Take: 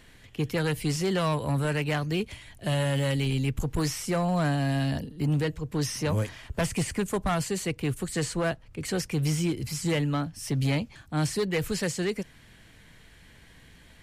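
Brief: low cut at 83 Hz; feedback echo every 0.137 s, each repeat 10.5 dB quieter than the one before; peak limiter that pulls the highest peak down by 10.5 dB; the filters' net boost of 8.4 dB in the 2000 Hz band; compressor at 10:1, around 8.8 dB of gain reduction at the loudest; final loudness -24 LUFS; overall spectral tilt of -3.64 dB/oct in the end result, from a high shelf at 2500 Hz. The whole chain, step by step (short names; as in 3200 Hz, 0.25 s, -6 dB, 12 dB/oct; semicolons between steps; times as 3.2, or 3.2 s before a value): HPF 83 Hz; bell 2000 Hz +6.5 dB; high shelf 2500 Hz +8 dB; compressor 10:1, threshold -28 dBFS; limiter -25 dBFS; feedback echo 0.137 s, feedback 30%, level -10.5 dB; gain +10 dB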